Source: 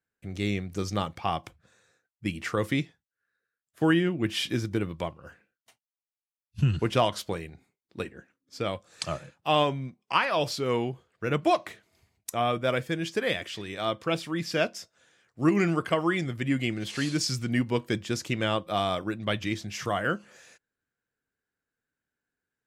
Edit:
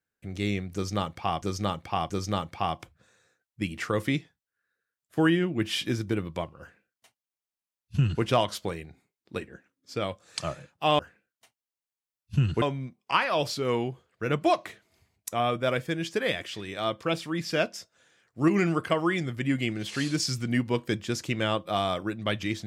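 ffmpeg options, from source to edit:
-filter_complex "[0:a]asplit=5[s0][s1][s2][s3][s4];[s0]atrim=end=1.422[s5];[s1]atrim=start=0.738:end=1.422[s6];[s2]atrim=start=0.738:end=9.632[s7];[s3]atrim=start=5.238:end=6.872[s8];[s4]atrim=start=9.628[s9];[s5][s6]acrossfade=d=0.004:c1=hsin:c2=hsin[s10];[s10][s7]acrossfade=d=0.004:c1=hsin:c2=hsin[s11];[s11][s8]acrossfade=d=0.004:c1=hsin:c2=hsin[s12];[s12][s9]acrossfade=d=0.004:c1=hsin:c2=hsin"

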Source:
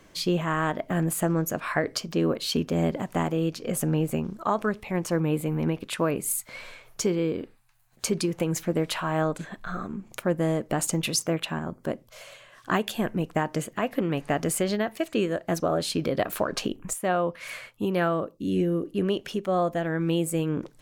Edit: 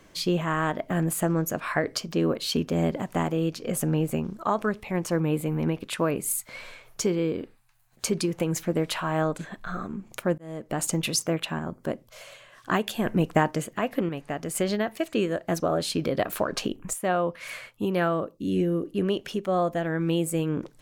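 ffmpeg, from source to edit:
-filter_complex "[0:a]asplit=6[s0][s1][s2][s3][s4][s5];[s0]atrim=end=10.38,asetpts=PTS-STARTPTS,afade=t=out:st=10.376:d=0.004:c=hsin[s6];[s1]atrim=start=10.38:end=13.062,asetpts=PTS-STARTPTS,afade=t=in:d=0.5[s7];[s2]atrim=start=13.058:end=13.512,asetpts=PTS-STARTPTS,volume=1.68[s8];[s3]atrim=start=13.508:end=14.092[s9];[s4]atrim=start=14.088:end=14.552,asetpts=PTS-STARTPTS,volume=0.501[s10];[s5]atrim=start=14.548[s11];[s6][s7]concat=n=2:v=0:a=1[s12];[s12][s8]acrossfade=d=0.004:c1=hsin:c2=hsin[s13];[s13][s9]acrossfade=d=0.004:c1=hsin:c2=hsin[s14];[s14][s10]acrossfade=d=0.004:c1=hsin:c2=hsin[s15];[s15][s11]acrossfade=d=0.004:c1=hsin:c2=hsin"

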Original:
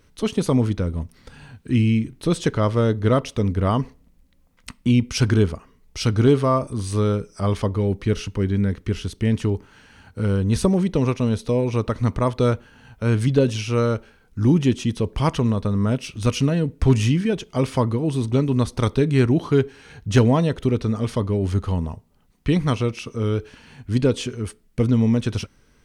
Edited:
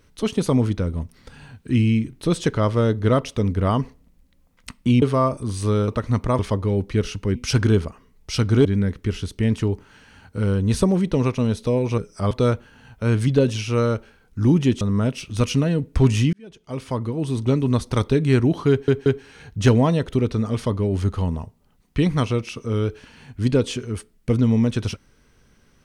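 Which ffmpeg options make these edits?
-filter_complex "[0:a]asplit=12[s0][s1][s2][s3][s4][s5][s6][s7][s8][s9][s10][s11];[s0]atrim=end=5.022[s12];[s1]atrim=start=6.318:end=7.182[s13];[s2]atrim=start=11.798:end=12.312[s14];[s3]atrim=start=7.508:end=8.472[s15];[s4]atrim=start=5.018:end=6.322[s16];[s5]atrim=start=8.468:end=11.802[s17];[s6]atrim=start=7.178:end=7.512[s18];[s7]atrim=start=12.308:end=14.812[s19];[s8]atrim=start=15.668:end=17.19,asetpts=PTS-STARTPTS,afade=t=out:st=1.518:d=0.004:c=hsin[s20];[s9]atrim=start=17.19:end=19.742,asetpts=PTS-STARTPTS,afade=t=in:d=1.16[s21];[s10]atrim=start=19.558:end=19.742[s22];[s11]atrim=start=19.558[s23];[s12][s13]acrossfade=d=0.004:c1=hsin:c2=hsin[s24];[s24][s14]acrossfade=d=0.004:c1=hsin:c2=hsin[s25];[s25][s15]acrossfade=d=0.004:c1=hsin:c2=hsin[s26];[s26][s16]acrossfade=d=0.004:c1=hsin:c2=hsin[s27];[s27][s17]acrossfade=d=0.004:c1=hsin:c2=hsin[s28];[s28][s18]acrossfade=d=0.004:c1=hsin:c2=hsin[s29];[s29][s19]acrossfade=d=0.004:c1=hsin:c2=hsin[s30];[s20][s21]concat=n=2:v=0:a=1[s31];[s30][s31]acrossfade=d=0.004:c1=hsin:c2=hsin[s32];[s32][s22]acrossfade=d=0.004:c1=hsin:c2=hsin[s33];[s33][s23]acrossfade=d=0.004:c1=hsin:c2=hsin"

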